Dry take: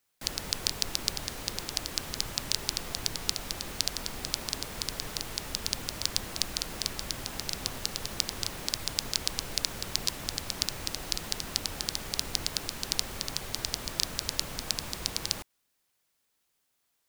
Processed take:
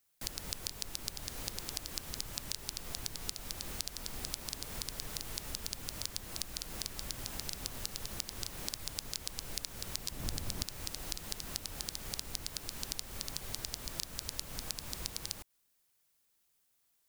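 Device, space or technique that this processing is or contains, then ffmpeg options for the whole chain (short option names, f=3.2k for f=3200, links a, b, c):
ASMR close-microphone chain: -filter_complex "[0:a]lowshelf=f=120:g=6,acompressor=threshold=-34dB:ratio=4,highshelf=f=6.7k:g=7.5,asettb=1/sr,asplit=3[a][b][c];[a]atrim=end=10.114[d];[b]atrim=start=10.11:end=10.63,asetpts=PTS-STARTPTS,afade=t=in:d=0.004:c=qsin,afade=t=out:st=0.516:d=0.004:c=qsin,lowshelf=f=470:g=8[e];[c]atrim=start=10.626[f];[d][e]acrossfade=d=0.004:c1=hsin:c2=qsin[g];[g][f]acrossfade=d=0.004:c1=qsin:c2=hsin,volume=-4dB"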